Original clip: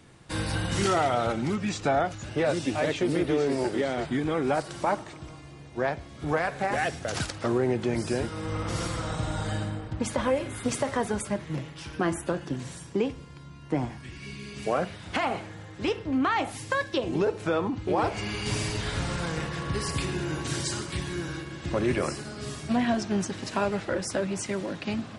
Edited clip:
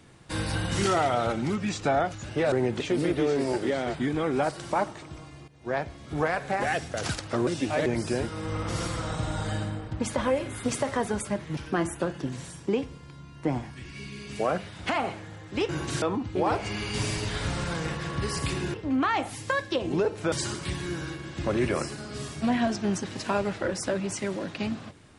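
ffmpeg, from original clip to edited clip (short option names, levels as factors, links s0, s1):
-filter_complex "[0:a]asplit=11[s0][s1][s2][s3][s4][s5][s6][s7][s8][s9][s10];[s0]atrim=end=2.522[s11];[s1]atrim=start=7.578:end=7.862[s12];[s2]atrim=start=2.908:end=5.59,asetpts=PTS-STARTPTS,afade=t=out:st=2.678:d=0.004:c=hsin:silence=0.158489[s13];[s3]atrim=start=5.59:end=7.582,asetpts=PTS-STARTPTS,afade=t=in:d=0.32:silence=0.158489[s14];[s4]atrim=start=2.518:end=2.912[s15];[s5]atrim=start=7.858:end=11.572[s16];[s6]atrim=start=11.838:end=15.962[s17];[s7]atrim=start=20.258:end=20.592[s18];[s8]atrim=start=17.538:end=20.262[s19];[s9]atrim=start=15.958:end=17.542[s20];[s10]atrim=start=20.588[s21];[s11][s12]acrossfade=d=0.004:c1=hsin:c2=hsin[s22];[s13][s14]concat=n=2:v=0:a=1[s23];[s22][s23]acrossfade=d=0.004:c1=hsin:c2=hsin[s24];[s24][s15]acrossfade=d=0.004:c1=hsin:c2=hsin[s25];[s25][s16]acrossfade=d=0.004:c1=hsin:c2=hsin[s26];[s26][s17]acrossfade=d=0.004:c1=hsin:c2=hsin[s27];[s27][s18]acrossfade=d=0.004:c1=hsin:c2=hsin[s28];[s28][s19]acrossfade=d=0.004:c1=hsin:c2=hsin[s29];[s29][s20]acrossfade=d=0.004:c1=hsin:c2=hsin[s30];[s30][s21]acrossfade=d=0.004:c1=hsin:c2=hsin"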